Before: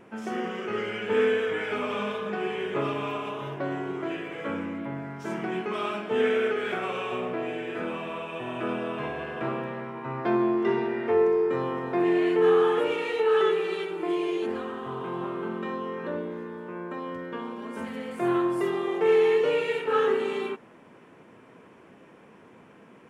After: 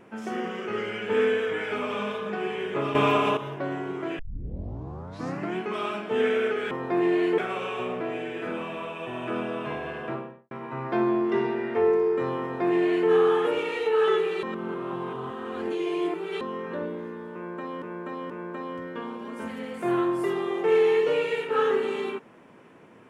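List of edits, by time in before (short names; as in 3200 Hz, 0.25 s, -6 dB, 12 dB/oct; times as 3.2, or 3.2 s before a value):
2.95–3.37 gain +10 dB
4.19 tape start 1.38 s
9.3–9.84 studio fade out
11.74–12.41 copy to 6.71
13.76–15.74 reverse
16.67–17.15 loop, 3 plays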